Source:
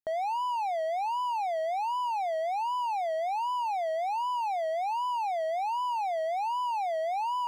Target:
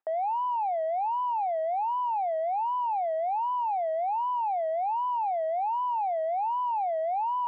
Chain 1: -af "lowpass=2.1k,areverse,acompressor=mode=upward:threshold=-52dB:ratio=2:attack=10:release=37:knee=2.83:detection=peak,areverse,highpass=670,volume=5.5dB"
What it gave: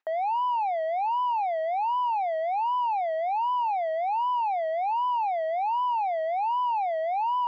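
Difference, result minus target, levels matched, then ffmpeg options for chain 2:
2000 Hz band +8.5 dB
-af "lowpass=1k,areverse,acompressor=mode=upward:threshold=-52dB:ratio=2:attack=10:release=37:knee=2.83:detection=peak,areverse,highpass=670,volume=5.5dB"

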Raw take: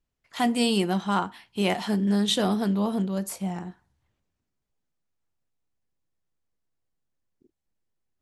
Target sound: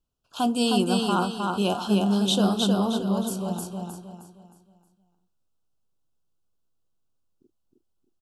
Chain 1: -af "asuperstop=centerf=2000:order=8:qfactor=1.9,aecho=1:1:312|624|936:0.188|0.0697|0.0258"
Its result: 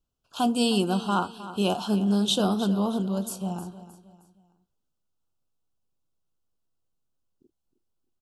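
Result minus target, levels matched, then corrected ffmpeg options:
echo-to-direct -11.5 dB
-af "asuperstop=centerf=2000:order=8:qfactor=1.9,aecho=1:1:312|624|936|1248|1560:0.708|0.262|0.0969|0.0359|0.0133"

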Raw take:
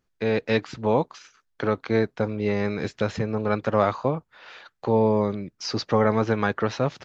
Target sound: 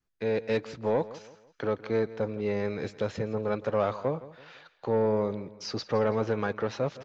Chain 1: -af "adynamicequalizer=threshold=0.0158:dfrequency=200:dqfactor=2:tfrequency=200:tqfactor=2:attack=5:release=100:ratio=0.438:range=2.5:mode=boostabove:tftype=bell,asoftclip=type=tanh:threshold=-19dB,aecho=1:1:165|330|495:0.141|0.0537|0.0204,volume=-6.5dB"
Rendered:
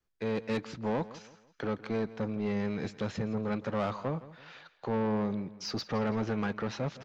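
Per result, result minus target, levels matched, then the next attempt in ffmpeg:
soft clip: distortion +9 dB; 250 Hz band +5.0 dB
-af "adynamicequalizer=threshold=0.0158:dfrequency=200:dqfactor=2:tfrequency=200:tqfactor=2:attack=5:release=100:ratio=0.438:range=2.5:mode=boostabove:tftype=bell,asoftclip=type=tanh:threshold=-11dB,aecho=1:1:165|330|495:0.141|0.0537|0.0204,volume=-6.5dB"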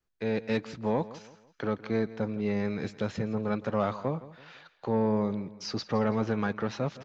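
250 Hz band +4.5 dB
-af "adynamicequalizer=threshold=0.0158:dfrequency=500:dqfactor=2:tfrequency=500:tqfactor=2:attack=5:release=100:ratio=0.438:range=2.5:mode=boostabove:tftype=bell,asoftclip=type=tanh:threshold=-11dB,aecho=1:1:165|330|495:0.141|0.0537|0.0204,volume=-6.5dB"

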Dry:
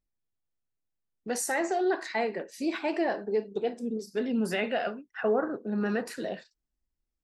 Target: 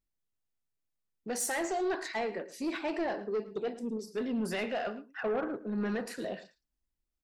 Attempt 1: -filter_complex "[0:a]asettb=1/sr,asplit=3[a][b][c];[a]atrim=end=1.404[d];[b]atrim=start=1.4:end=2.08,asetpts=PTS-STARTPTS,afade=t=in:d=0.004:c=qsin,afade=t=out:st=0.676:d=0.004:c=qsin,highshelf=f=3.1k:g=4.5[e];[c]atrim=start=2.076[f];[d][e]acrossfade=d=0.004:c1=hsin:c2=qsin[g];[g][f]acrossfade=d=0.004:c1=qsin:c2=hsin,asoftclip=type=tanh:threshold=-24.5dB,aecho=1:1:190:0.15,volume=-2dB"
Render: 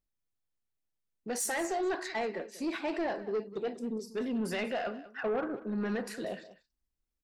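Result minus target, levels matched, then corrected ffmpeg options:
echo 79 ms late
-filter_complex "[0:a]asettb=1/sr,asplit=3[a][b][c];[a]atrim=end=1.404[d];[b]atrim=start=1.4:end=2.08,asetpts=PTS-STARTPTS,afade=t=in:d=0.004:c=qsin,afade=t=out:st=0.676:d=0.004:c=qsin,highshelf=f=3.1k:g=4.5[e];[c]atrim=start=2.076[f];[d][e]acrossfade=d=0.004:c1=hsin:c2=qsin[g];[g][f]acrossfade=d=0.004:c1=qsin:c2=hsin,asoftclip=type=tanh:threshold=-24.5dB,aecho=1:1:111:0.15,volume=-2dB"

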